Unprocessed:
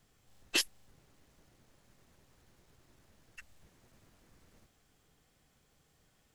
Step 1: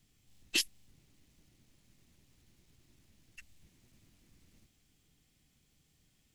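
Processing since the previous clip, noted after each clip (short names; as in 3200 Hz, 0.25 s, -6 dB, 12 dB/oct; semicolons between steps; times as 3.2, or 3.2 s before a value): band shelf 840 Hz -10 dB 2.3 oct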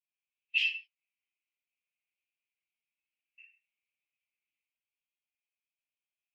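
band-pass 2500 Hz, Q 4.5; reverb, pre-delay 3 ms, DRR -12 dB; spectral expander 1.5:1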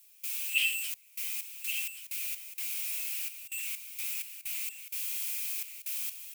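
switching spikes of -26 dBFS; step gate ".xxx.x.x.x" 64 bpm -24 dB; echo 1.129 s -10 dB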